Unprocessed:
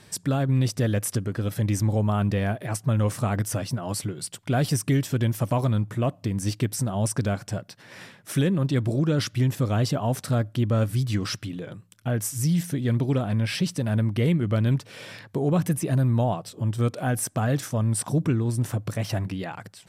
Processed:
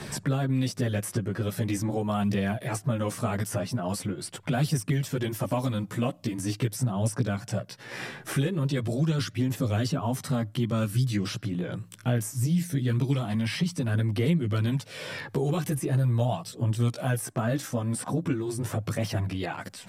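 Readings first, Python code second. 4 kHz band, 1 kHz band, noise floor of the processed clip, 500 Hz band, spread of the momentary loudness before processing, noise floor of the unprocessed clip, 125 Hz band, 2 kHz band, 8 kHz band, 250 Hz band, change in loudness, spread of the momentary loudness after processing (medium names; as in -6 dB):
-1.5 dB, -2.5 dB, -49 dBFS, -2.5 dB, 8 LU, -54 dBFS, -3.5 dB, -1.0 dB, -4.5 dB, -2.5 dB, -3.0 dB, 6 LU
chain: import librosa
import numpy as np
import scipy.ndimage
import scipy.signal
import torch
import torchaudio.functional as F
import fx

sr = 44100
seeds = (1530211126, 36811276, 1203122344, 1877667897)

y = fx.chorus_voices(x, sr, voices=2, hz=0.21, base_ms=14, depth_ms=2.8, mix_pct=55)
y = fx.band_squash(y, sr, depth_pct=70)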